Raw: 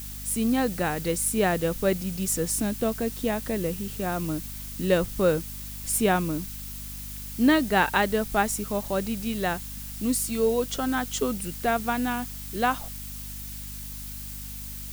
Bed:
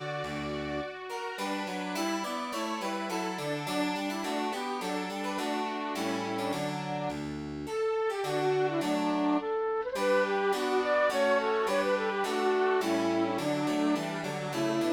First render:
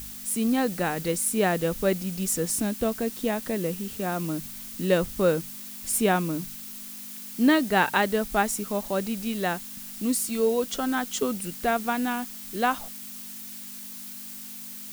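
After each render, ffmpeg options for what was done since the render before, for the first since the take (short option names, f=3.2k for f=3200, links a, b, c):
-af "bandreject=f=50:t=h:w=4,bandreject=f=100:t=h:w=4,bandreject=f=150:t=h:w=4"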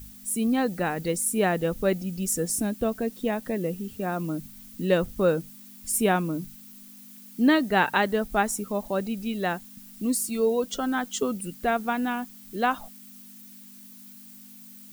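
-af "afftdn=nr=11:nf=-40"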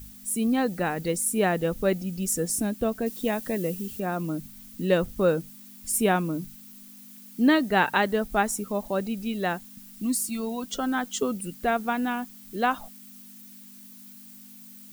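-filter_complex "[0:a]asettb=1/sr,asplit=3[a][b][c];[a]atrim=end=3.064[d];[b]atrim=start=3.06:end=4,asetpts=PTS-STARTPTS,afade=t=in:d=0.004:c=qsin,afade=t=out:st=0.936:d=0.004:c=qsin,highshelf=f=3.6k:g=7.5[e];[c]atrim=start=3.996[f];[d][e]acrossfade=d=0.004:c1=hsin:c2=qsin[g];[g][f]acrossfade=d=0.004:c1=qsin:c2=hsin,asettb=1/sr,asplit=3[h][i][j];[h]atrim=end=9.844[k];[i]atrim=start=9.84:end=10.71,asetpts=PTS-STARTPTS,afade=t=in:d=0.004:c=qsin,afade=t=out:st=0.866:d=0.004:c=qsin,equalizer=f=470:w=3.5:g=-14[l];[j]atrim=start=10.706[m];[k][l]acrossfade=d=0.004:c1=hsin:c2=qsin[n];[n][m]acrossfade=d=0.004:c1=qsin:c2=hsin"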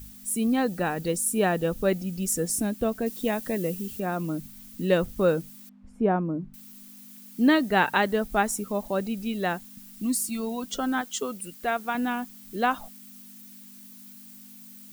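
-filter_complex "[0:a]asettb=1/sr,asplit=3[a][b][c];[a]atrim=end=0.674[d];[b]atrim=start=0.67:end=1.88,asetpts=PTS-STARTPTS,afade=t=in:d=0.004:c=qsin,afade=t=out:st=1.206:d=0.004:c=qsin,bandreject=f=2.1k:w=8.7[e];[c]atrim=start=1.876[f];[d][e]acrossfade=d=0.004:c1=hsin:c2=qsin[g];[g][f]acrossfade=d=0.004:c1=qsin:c2=hsin,asettb=1/sr,asplit=3[h][i][j];[h]atrim=end=5.694[k];[i]atrim=start=5.69:end=6.54,asetpts=PTS-STARTPTS,afade=t=in:d=0.004:c=qsin,afade=t=out:st=0.846:d=0.004:c=qsin,lowpass=1k[l];[j]atrim=start=6.536[m];[k][l]acrossfade=d=0.004:c1=hsin:c2=qsin[n];[n][m]acrossfade=d=0.004:c1=qsin:c2=hsin,asettb=1/sr,asplit=3[o][p][q];[o]atrim=end=11.014[r];[p]atrim=start=11.01:end=11.95,asetpts=PTS-STARTPTS,afade=t=in:d=0.004:c=qsin,afade=t=out:st=0.936:d=0.004:c=qsin,lowshelf=f=380:g=-10[s];[q]atrim=start=11.946[t];[r][s]acrossfade=d=0.004:c1=hsin:c2=qsin[u];[u][t]acrossfade=d=0.004:c1=qsin:c2=hsin"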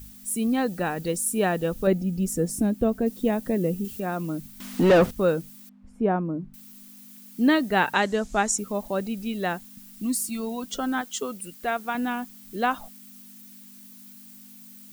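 -filter_complex "[0:a]asettb=1/sr,asplit=3[a][b][c];[a]atrim=end=1.874[d];[b]atrim=start=1.87:end=3.85,asetpts=PTS-STARTPTS,afade=t=in:d=0.004:c=qsin,afade=t=out:st=1.976:d=0.004:c=qsin,tiltshelf=f=850:g=5.5[e];[c]atrim=start=3.846[f];[d][e]acrossfade=d=0.004:c1=hsin:c2=qsin[g];[g][f]acrossfade=d=0.004:c1=qsin:c2=hsin,asettb=1/sr,asplit=3[h][i][j];[h]atrim=end=4.604[k];[i]atrim=start=4.6:end=5.11,asetpts=PTS-STARTPTS,afade=t=in:d=0.004:c=qsin,afade=t=out:st=0.506:d=0.004:c=qsin,asplit=2[l][m];[m]highpass=f=720:p=1,volume=30dB,asoftclip=type=tanh:threshold=-8.5dB[n];[l][n]amix=inputs=2:normalize=0,lowpass=f=1.4k:p=1,volume=-6dB[o];[j]atrim=start=5.106[p];[k][o]acrossfade=d=0.004:c1=hsin:c2=qsin[q];[q][p]acrossfade=d=0.004:c1=qsin:c2=hsin,asplit=3[r][s][t];[r]afade=t=out:st=7.93:d=0.02[u];[s]lowpass=f=7k:t=q:w=3.2,afade=t=in:st=7.93:d=0.02,afade=t=out:st=8.57:d=0.02[v];[t]afade=t=in:st=8.57:d=0.02[w];[u][v][w]amix=inputs=3:normalize=0"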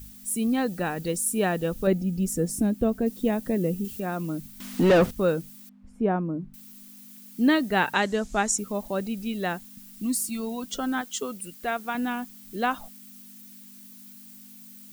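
-af "equalizer=f=780:w=0.58:g=-2"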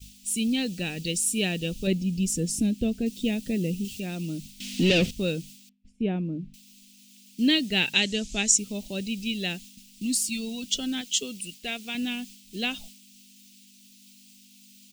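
-af "agate=range=-33dB:threshold=-41dB:ratio=3:detection=peak,firequalizer=gain_entry='entry(190,0);entry(1100,-21);entry(2600,11);entry(7200,6);entry(12000,-5)':delay=0.05:min_phase=1"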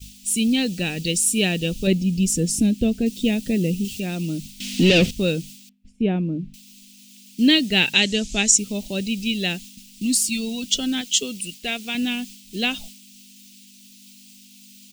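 -af "volume=6dB,alimiter=limit=-3dB:level=0:latency=1"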